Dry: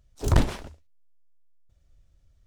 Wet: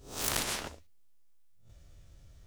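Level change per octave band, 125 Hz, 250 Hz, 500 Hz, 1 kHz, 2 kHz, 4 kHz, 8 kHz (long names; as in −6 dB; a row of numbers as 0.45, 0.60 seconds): −20.0, −13.5, −9.0, −5.0, 0.0, +4.0, +8.0 decibels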